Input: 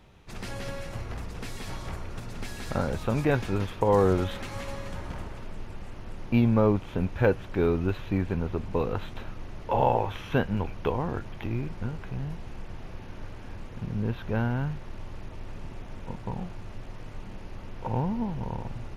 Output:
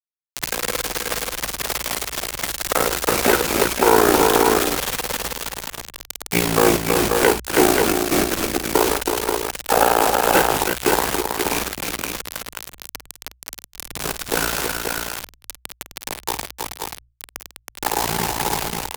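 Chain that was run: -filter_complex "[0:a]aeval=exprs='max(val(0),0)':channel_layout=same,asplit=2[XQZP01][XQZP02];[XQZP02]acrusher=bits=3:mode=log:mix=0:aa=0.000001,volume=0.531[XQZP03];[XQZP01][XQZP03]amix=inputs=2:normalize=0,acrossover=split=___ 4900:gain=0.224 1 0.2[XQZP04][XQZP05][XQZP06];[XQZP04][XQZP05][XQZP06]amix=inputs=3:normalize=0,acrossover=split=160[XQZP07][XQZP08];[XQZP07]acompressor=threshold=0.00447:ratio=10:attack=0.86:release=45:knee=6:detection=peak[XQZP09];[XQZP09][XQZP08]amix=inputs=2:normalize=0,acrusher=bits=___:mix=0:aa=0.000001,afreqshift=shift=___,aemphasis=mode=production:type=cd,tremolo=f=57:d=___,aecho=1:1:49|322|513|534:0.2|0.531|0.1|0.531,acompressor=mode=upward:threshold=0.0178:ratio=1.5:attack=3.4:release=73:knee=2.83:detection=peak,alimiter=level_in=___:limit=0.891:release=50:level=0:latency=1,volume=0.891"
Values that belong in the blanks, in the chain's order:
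330, 5, -62, 0.919, 6.31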